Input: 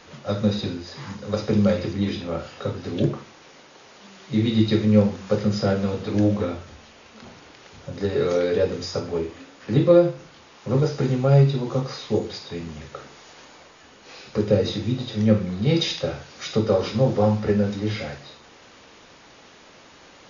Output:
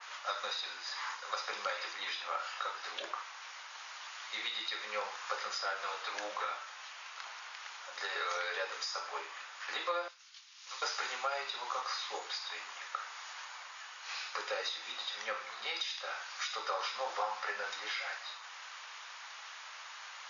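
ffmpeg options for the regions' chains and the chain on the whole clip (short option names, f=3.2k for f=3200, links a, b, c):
-filter_complex "[0:a]asettb=1/sr,asplit=3[a][b][c];[a]atrim=end=10.084[d];[b]atrim=start=10.08:end=10.82,asetpts=PTS-STARTPTS,afade=t=in:d=0.004:c=qsin,afade=t=out:st=0.736:d=0.004:c=qsin,bandpass=f=5.2k:t=q:w=0.98,agate=range=-33dB:threshold=-51dB:ratio=3:release=100:detection=peak[e];[c]atrim=start=10.816[f];[d][e]acrossfade=d=0.004:c1=hsin:c2=qsin[g];[g][f]acrossfade=d=0.004:c1=qsin:c2=hsin,highpass=f=1k:w=0.5412,highpass=f=1k:w=1.3066,acompressor=threshold=-36dB:ratio=6,adynamicequalizer=threshold=0.00178:dfrequency=1900:dqfactor=0.7:tfrequency=1900:tqfactor=0.7:attack=5:release=100:ratio=0.375:range=3:mode=cutabove:tftype=highshelf,volume=5.5dB"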